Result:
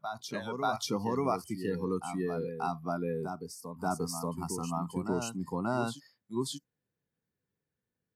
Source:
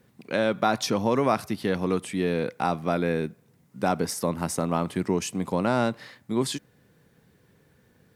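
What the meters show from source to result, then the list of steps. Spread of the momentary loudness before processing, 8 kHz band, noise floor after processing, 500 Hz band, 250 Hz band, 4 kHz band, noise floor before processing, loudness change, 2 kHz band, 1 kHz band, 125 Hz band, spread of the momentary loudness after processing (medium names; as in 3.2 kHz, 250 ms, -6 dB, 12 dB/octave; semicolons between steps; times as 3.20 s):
6 LU, -6.5 dB, under -85 dBFS, -8.5 dB, -7.5 dB, -7.5 dB, -62 dBFS, -8.0 dB, -10.5 dB, -6.5 dB, -7.0 dB, 7 LU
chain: spectral noise reduction 21 dB; reverse echo 585 ms -7 dB; trim -7 dB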